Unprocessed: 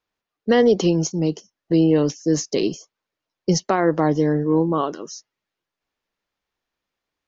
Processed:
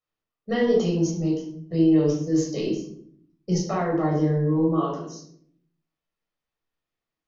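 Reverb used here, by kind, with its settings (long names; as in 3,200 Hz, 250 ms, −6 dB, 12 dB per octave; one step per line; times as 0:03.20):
rectangular room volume 980 cubic metres, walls furnished, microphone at 6.3 metres
level −14 dB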